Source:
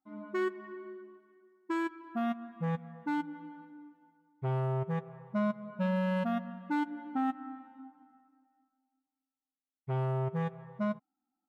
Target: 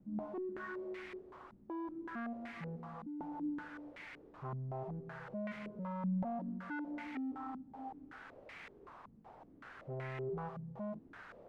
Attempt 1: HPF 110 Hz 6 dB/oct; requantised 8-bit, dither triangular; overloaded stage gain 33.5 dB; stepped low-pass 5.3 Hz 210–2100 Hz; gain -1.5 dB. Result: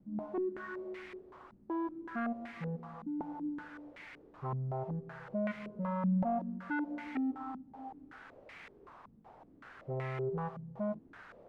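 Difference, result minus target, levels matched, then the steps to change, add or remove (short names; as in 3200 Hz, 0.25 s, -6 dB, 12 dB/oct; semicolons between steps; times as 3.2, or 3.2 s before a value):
overloaded stage: distortion -5 dB
change: overloaded stage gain 40.5 dB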